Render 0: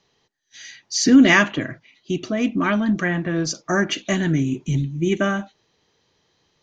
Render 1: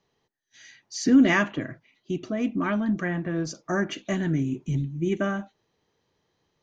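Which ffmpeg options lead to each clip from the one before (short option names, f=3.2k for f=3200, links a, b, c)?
-af "equalizer=f=4.5k:t=o:w=2.3:g=-7,volume=-5dB"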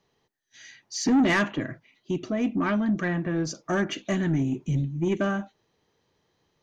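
-af "asoftclip=type=tanh:threshold=-18.5dB,volume=2dB"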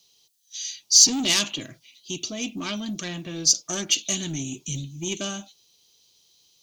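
-af "aexciter=amount=10.4:drive=8.7:freq=2.8k,volume=-7dB"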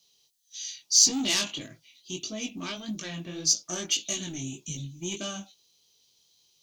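-af "flanger=delay=18.5:depth=4.7:speed=1.7,volume=-1.5dB"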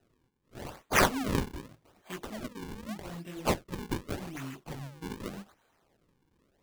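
-af "acrusher=samples=39:mix=1:aa=0.000001:lfo=1:lforange=62.4:lforate=0.84,volume=-4.5dB"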